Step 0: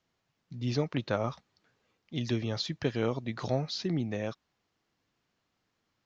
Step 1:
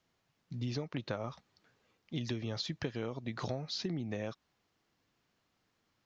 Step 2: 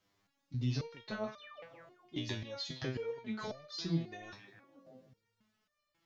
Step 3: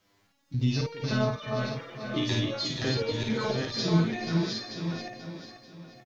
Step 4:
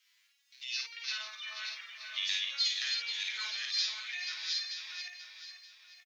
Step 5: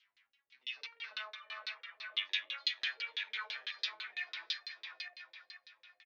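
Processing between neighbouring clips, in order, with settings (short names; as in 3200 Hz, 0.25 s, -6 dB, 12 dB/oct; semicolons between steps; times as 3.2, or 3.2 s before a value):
compressor 10:1, threshold -34 dBFS, peak gain reduction 11.5 dB; gain +1 dB
painted sound fall, 1.38–1.62, 410–4300 Hz -47 dBFS; delay with a stepping band-pass 0.157 s, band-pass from 2500 Hz, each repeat -0.7 oct, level -8 dB; stepped resonator 3.7 Hz 100–600 Hz; gain +11 dB
regenerating reverse delay 0.462 s, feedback 43%, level -3 dB; on a send: tapped delay 53/485 ms -3.5/-8.5 dB; on the sum: gain +8 dB
in parallel at +3 dB: limiter -20.5 dBFS, peak gain reduction 8.5 dB; on the sum: ladder high-pass 1800 Hz, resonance 30%
tilt shelf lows +4.5 dB, about 840 Hz; LFO low-pass saw down 6 Hz 390–4200 Hz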